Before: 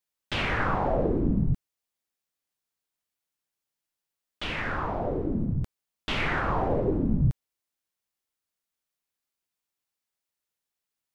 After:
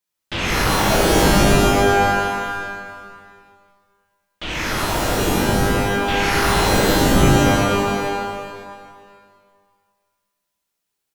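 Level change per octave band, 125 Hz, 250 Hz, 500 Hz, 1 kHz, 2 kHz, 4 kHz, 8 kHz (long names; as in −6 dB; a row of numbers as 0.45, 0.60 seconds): +8.5 dB, +11.0 dB, +12.5 dB, +14.0 dB, +13.0 dB, +16.5 dB, can't be measured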